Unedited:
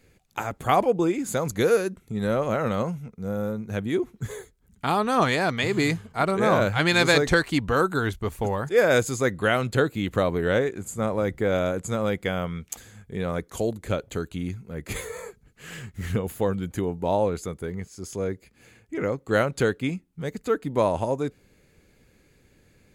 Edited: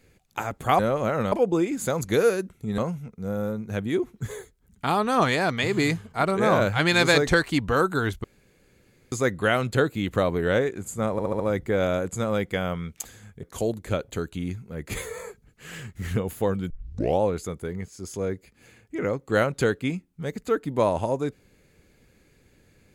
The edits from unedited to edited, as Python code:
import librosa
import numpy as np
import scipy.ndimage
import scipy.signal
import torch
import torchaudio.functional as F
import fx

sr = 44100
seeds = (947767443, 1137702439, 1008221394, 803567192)

y = fx.edit(x, sr, fx.move(start_s=2.25, length_s=0.53, to_s=0.79),
    fx.room_tone_fill(start_s=8.24, length_s=0.88),
    fx.stutter(start_s=11.12, slice_s=0.07, count=5),
    fx.cut(start_s=13.15, length_s=0.27),
    fx.tape_start(start_s=16.69, length_s=0.51), tone=tone)